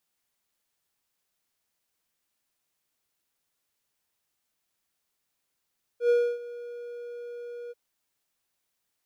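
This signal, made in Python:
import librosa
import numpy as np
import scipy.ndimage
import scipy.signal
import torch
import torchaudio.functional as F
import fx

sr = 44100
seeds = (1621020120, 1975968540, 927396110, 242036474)

y = fx.adsr_tone(sr, wave='triangle', hz=479.0, attack_ms=95.0, decay_ms=286.0, sustain_db=-19.0, held_s=1.71, release_ms=28.0, level_db=-15.5)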